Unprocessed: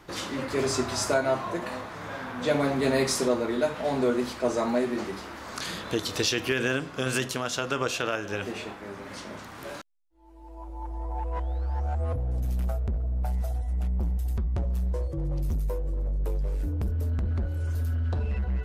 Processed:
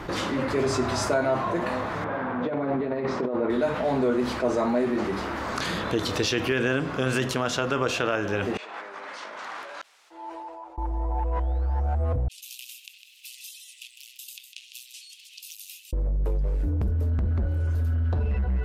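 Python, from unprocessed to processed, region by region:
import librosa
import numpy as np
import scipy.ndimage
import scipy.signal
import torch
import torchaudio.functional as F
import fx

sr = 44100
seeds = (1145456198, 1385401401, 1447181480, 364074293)

y = fx.chain(x, sr, fx.spacing_loss(db_at_10k=39),
    fx.over_compress(threshold_db=-29.0, ratio=-0.5),
    fx.highpass(hz=230.0, slope=6), at=(2.04, 3.5))
y = fx.chain(y, sr, fx.over_compress(threshold_db=-50.0, ratio=-1.0),
    fx.bandpass_edges(low_hz=750.0, high_hz=7800.0), at=(8.57, 10.78))
y = fx.chain(y, sr, fx.cheby1_highpass(hz=2600.0, order=6),
    fx.echo_single(ms=154, db=-15.5), at=(12.28, 15.93))
y = fx.high_shelf(y, sr, hz=3900.0, db=-11.5)
y = fx.env_flatten(y, sr, amount_pct=50)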